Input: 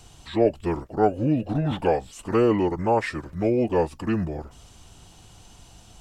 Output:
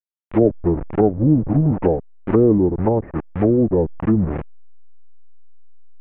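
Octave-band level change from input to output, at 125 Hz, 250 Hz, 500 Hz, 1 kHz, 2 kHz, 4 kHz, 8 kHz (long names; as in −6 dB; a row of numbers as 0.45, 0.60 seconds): +9.0 dB, +7.5 dB, +4.0 dB, −2.0 dB, −6.0 dB, below −15 dB, can't be measured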